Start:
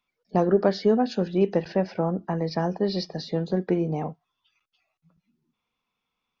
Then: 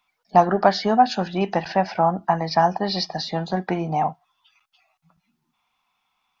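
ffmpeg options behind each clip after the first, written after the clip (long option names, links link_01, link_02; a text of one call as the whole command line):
ffmpeg -i in.wav -af "lowshelf=frequency=600:width_type=q:width=3:gain=-7.5,volume=8.5dB" out.wav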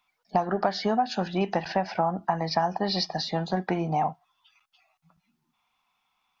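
ffmpeg -i in.wav -af "acompressor=threshold=-18dB:ratio=10,volume=-2dB" out.wav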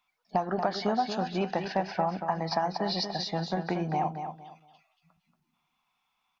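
ffmpeg -i in.wav -af "aecho=1:1:232|464|696:0.398|0.104|0.0269,volume=-3.5dB" out.wav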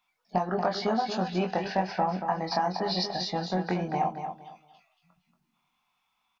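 ffmpeg -i in.wav -filter_complex "[0:a]asplit=2[link_01][link_02];[link_02]adelay=22,volume=-4dB[link_03];[link_01][link_03]amix=inputs=2:normalize=0" out.wav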